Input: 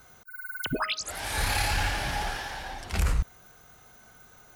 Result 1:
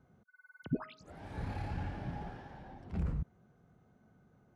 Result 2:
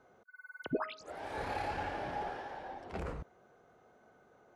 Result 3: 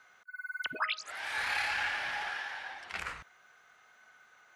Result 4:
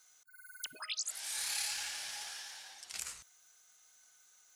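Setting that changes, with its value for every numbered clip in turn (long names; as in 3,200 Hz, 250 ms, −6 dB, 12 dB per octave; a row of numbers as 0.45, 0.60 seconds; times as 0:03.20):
resonant band-pass, frequency: 180, 450, 1,800, 7,400 Hertz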